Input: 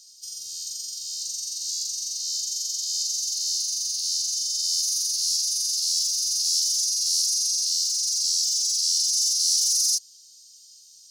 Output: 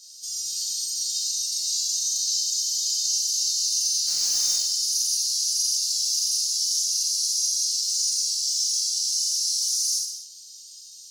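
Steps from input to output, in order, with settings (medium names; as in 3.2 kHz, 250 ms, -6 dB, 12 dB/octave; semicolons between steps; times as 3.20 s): 4.07–4.55 s: jump at every zero crossing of -29.5 dBFS; peak limiter -22 dBFS, peak gain reduction 11.5 dB; gated-style reverb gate 310 ms falling, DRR -5 dB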